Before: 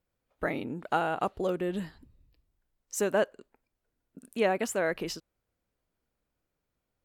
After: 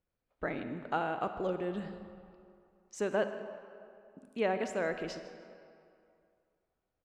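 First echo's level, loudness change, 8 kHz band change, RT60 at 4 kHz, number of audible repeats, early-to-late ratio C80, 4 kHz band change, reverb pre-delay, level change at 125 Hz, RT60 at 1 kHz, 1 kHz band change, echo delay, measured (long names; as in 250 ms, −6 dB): −18.5 dB, −4.5 dB, −12.5 dB, 1.5 s, 1, 9.5 dB, −6.5 dB, 34 ms, −4.0 dB, 2.5 s, −4.0 dB, 155 ms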